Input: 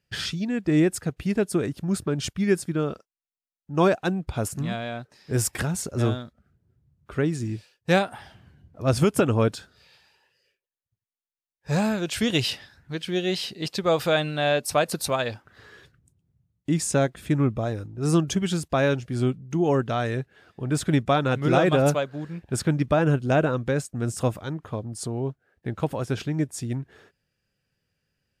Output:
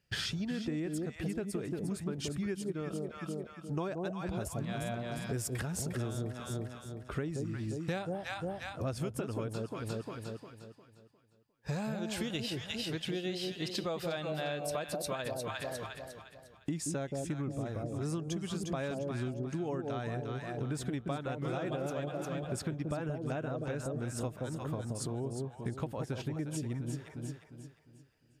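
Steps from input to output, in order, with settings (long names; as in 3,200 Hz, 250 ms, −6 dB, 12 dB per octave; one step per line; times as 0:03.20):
on a send: delay that swaps between a low-pass and a high-pass 177 ms, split 800 Hz, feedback 59%, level −3.5 dB
on the sum: downward compressor 10 to 1, threshold −33 dBFS, peak gain reduction 19.5 dB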